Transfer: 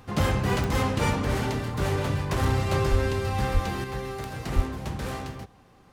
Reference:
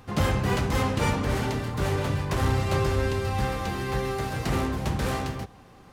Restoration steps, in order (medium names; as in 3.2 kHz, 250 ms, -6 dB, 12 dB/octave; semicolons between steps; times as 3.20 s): de-click; 2.90–3.02 s: high-pass 140 Hz 24 dB/octave; 3.53–3.65 s: high-pass 140 Hz 24 dB/octave; 4.55–4.67 s: high-pass 140 Hz 24 dB/octave; trim 0 dB, from 3.84 s +5 dB